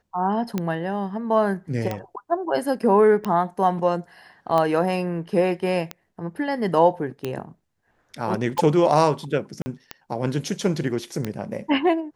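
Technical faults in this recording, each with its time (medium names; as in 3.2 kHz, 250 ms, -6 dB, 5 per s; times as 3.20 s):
tick 45 rpm -12 dBFS
9.62–9.66 s: dropout 40 ms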